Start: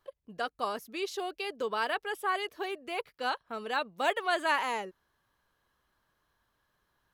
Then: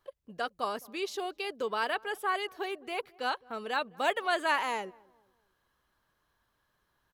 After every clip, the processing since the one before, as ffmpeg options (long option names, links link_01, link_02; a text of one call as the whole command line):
ffmpeg -i in.wav -filter_complex "[0:a]asplit=2[link_01][link_02];[link_02]adelay=212,lowpass=frequency=880:poles=1,volume=-22.5dB,asplit=2[link_03][link_04];[link_04]adelay=212,lowpass=frequency=880:poles=1,volume=0.45,asplit=2[link_05][link_06];[link_06]adelay=212,lowpass=frequency=880:poles=1,volume=0.45[link_07];[link_01][link_03][link_05][link_07]amix=inputs=4:normalize=0" out.wav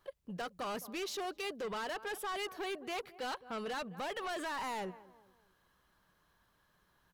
ffmpeg -i in.wav -af "equalizer=frequency=180:width_type=o:width=0.22:gain=9,alimiter=level_in=2dB:limit=-24dB:level=0:latency=1:release=62,volume=-2dB,asoftclip=type=tanh:threshold=-38.5dB,volume=3dB" out.wav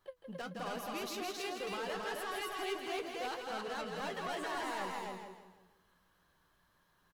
ffmpeg -i in.wav -filter_complex "[0:a]asplit=2[link_01][link_02];[link_02]aecho=0:1:163|326|489|652:0.473|0.175|0.0648|0.024[link_03];[link_01][link_03]amix=inputs=2:normalize=0,flanger=delay=10:depth=3.7:regen=52:speed=1.7:shape=triangular,asplit=2[link_04][link_05];[link_05]aecho=0:1:169.1|268.2:0.316|0.794[link_06];[link_04][link_06]amix=inputs=2:normalize=0,volume=1dB" out.wav